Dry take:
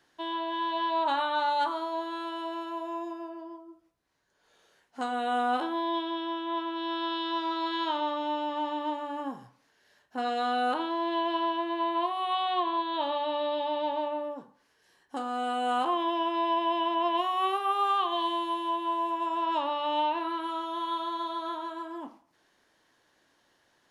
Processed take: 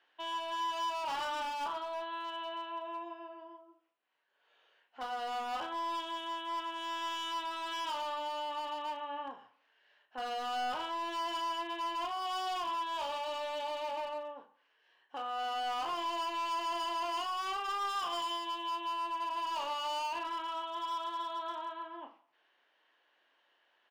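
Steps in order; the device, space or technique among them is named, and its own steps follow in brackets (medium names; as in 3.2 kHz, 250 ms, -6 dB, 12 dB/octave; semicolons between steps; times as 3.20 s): megaphone (band-pass 540–2600 Hz; peaking EQ 2.9 kHz +10 dB 0.55 oct; hard clipper -30 dBFS, distortion -9 dB; doubling 35 ms -10 dB); trim -4 dB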